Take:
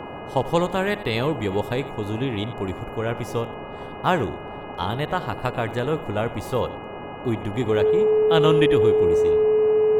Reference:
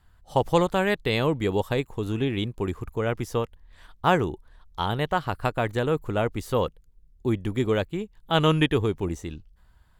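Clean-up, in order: de-hum 415.5 Hz, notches 7; band-stop 430 Hz, Q 30; noise print and reduce 21 dB; inverse comb 87 ms -16 dB

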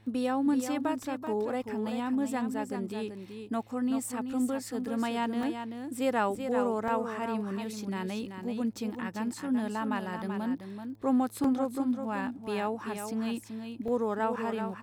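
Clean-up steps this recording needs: de-click; de-hum 108.7 Hz, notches 9; interpolate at 1.27/1.63/5.43/6.35/6.88/11.44/13.88 s, 3.2 ms; inverse comb 383 ms -7.5 dB

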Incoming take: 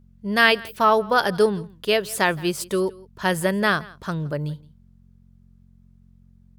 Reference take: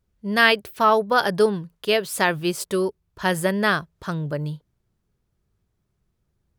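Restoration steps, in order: de-hum 45 Hz, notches 5; inverse comb 168 ms -22.5 dB

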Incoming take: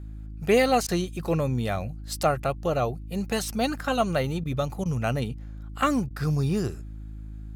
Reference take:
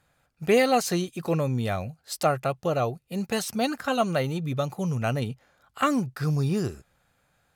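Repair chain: de-hum 53 Hz, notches 6; interpolate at 0.87/4.44/4.84/6.09 s, 14 ms

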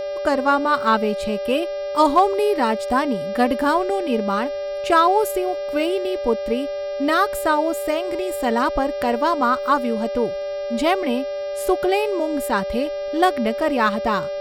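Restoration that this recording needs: clip repair -6 dBFS; de-hum 402.3 Hz, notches 14; band-stop 580 Hz, Q 30

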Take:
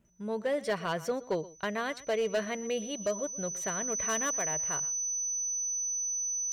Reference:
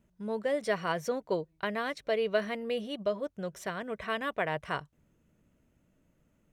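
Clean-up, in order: clip repair -24 dBFS; band-stop 6 kHz, Q 30; inverse comb 122 ms -19 dB; trim 0 dB, from 4.35 s +5.5 dB

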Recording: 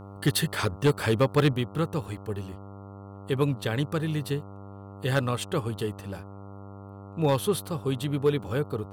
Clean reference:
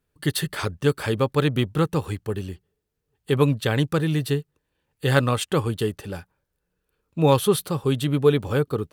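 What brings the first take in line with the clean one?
clip repair -15 dBFS; de-hum 99 Hz, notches 14; trim 0 dB, from 1.53 s +6 dB

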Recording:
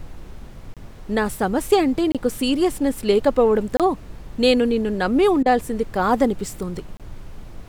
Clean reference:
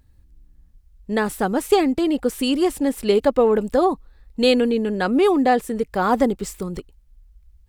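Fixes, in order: interpolate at 0.74/2.12/3.77/6.97 s, 27 ms; interpolate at 5.43 s, 28 ms; noise print and reduce 14 dB

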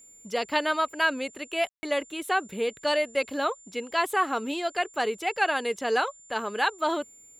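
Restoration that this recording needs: band-stop 7.2 kHz, Q 30; room tone fill 1.69–1.83 s

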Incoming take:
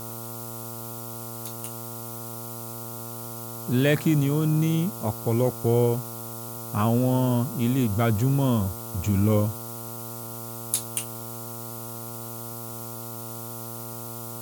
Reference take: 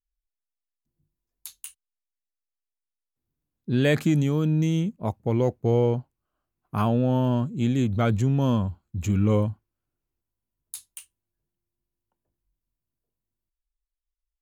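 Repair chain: de-hum 116.3 Hz, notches 12; noise print and reduce 30 dB; gain correction -12 dB, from 9.64 s

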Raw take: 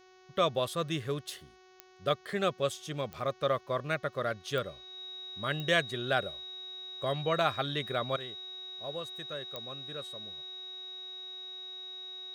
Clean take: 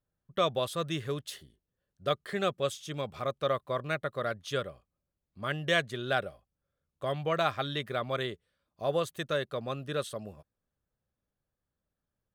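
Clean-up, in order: de-click; de-hum 371.7 Hz, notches 18; band-stop 3.8 kHz, Q 30; gain correction +10.5 dB, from 8.16 s

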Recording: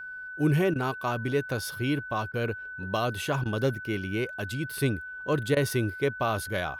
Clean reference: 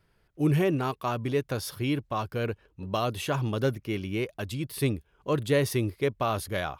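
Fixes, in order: band-stop 1.5 kHz, Q 30; interpolate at 0.74/2.32/3.44/5.55 s, 15 ms

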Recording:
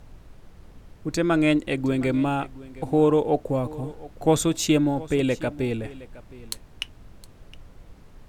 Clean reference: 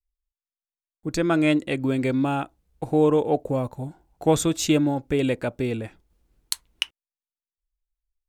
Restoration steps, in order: noise print and reduce 30 dB; inverse comb 715 ms -19 dB; trim 0 dB, from 6.03 s +5.5 dB

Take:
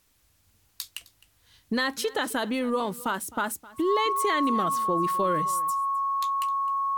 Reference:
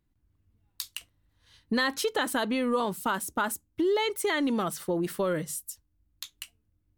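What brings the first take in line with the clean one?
band-stop 1.1 kHz, Q 30; expander -57 dBFS, range -21 dB; inverse comb 260 ms -20.5 dB

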